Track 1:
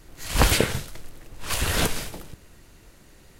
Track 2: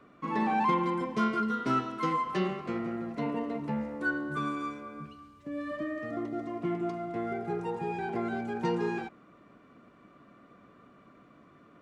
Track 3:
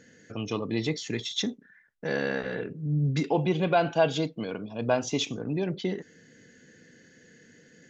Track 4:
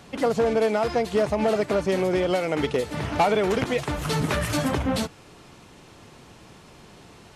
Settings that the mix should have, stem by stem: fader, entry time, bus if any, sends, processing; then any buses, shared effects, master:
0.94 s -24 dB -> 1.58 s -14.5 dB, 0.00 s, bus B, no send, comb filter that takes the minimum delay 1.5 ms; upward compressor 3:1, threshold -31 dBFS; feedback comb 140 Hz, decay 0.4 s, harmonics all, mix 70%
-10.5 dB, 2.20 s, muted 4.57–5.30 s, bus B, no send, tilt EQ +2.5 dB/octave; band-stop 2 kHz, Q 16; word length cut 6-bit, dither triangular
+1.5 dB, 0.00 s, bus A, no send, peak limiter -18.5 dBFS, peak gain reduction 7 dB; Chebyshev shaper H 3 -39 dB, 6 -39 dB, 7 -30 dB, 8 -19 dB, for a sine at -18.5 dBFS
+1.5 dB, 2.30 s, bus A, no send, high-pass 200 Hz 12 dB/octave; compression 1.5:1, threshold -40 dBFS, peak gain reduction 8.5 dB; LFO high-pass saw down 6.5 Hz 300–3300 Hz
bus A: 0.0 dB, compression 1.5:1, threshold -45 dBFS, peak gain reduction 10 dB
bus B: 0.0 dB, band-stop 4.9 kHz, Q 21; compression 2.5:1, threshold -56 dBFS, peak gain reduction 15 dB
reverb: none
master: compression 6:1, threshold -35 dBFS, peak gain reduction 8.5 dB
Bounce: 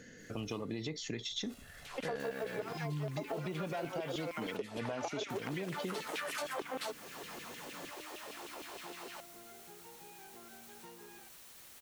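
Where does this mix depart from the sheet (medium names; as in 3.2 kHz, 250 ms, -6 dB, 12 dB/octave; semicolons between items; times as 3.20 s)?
stem 3: missing Chebyshev shaper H 3 -39 dB, 6 -39 dB, 7 -30 dB, 8 -19 dB, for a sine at -18.5 dBFS; stem 4: entry 2.30 s -> 1.85 s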